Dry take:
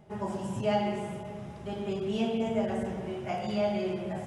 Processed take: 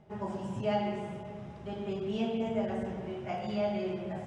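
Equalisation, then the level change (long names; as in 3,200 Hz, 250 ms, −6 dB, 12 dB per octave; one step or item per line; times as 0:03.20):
high-frequency loss of the air 70 metres
−2.5 dB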